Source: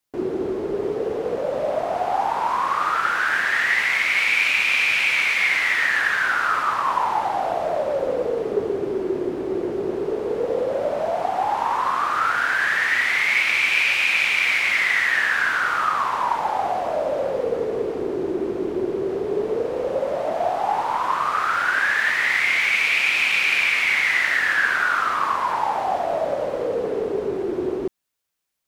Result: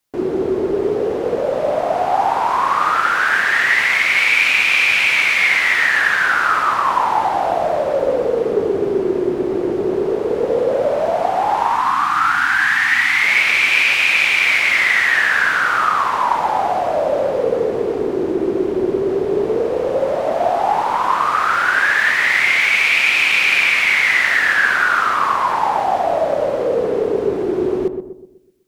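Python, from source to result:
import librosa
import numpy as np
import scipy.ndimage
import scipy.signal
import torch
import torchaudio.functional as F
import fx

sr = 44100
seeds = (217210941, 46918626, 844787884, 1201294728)

y = fx.spec_box(x, sr, start_s=11.68, length_s=1.54, low_hz=340.0, high_hz=720.0, gain_db=-18)
y = fx.echo_filtered(y, sr, ms=125, feedback_pct=47, hz=860.0, wet_db=-6.0)
y = y * librosa.db_to_amplitude(5.0)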